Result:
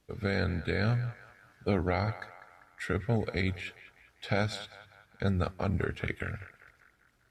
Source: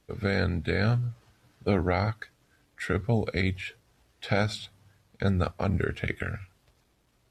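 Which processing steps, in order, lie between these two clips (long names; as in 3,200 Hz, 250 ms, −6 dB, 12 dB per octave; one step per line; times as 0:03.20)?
feedback echo with a band-pass in the loop 198 ms, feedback 57%, band-pass 1,300 Hz, level −12 dB
level −3.5 dB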